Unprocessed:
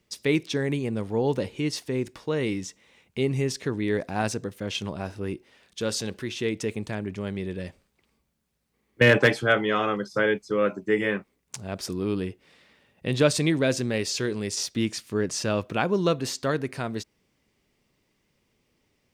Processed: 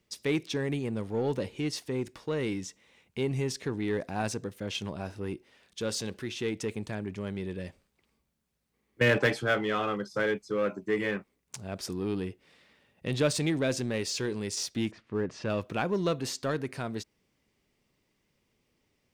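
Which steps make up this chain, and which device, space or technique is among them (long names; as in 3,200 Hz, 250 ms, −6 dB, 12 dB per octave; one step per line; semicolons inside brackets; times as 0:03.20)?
0:14.90–0:15.48: low-pass filter 1,300 Hz → 3,000 Hz 12 dB per octave
parallel distortion (in parallel at −5 dB: hard clipping −25 dBFS, distortion −6 dB)
on the sum: level −7.5 dB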